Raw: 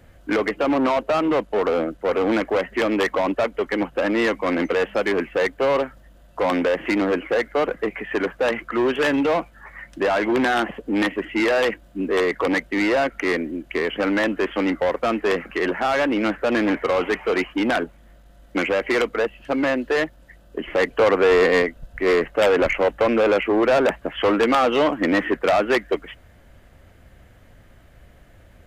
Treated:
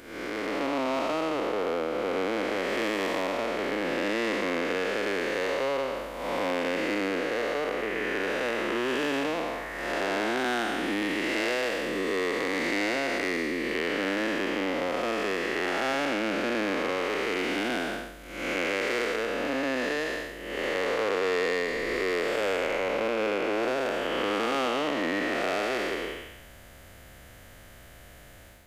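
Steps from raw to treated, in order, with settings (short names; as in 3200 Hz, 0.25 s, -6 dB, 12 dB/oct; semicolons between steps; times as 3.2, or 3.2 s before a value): time blur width 0.369 s; low shelf 290 Hz -6 dB; compressor 4:1, threshold -32 dBFS, peak gain reduction 13 dB; high shelf 3700 Hz +10 dB; AGC gain up to 5 dB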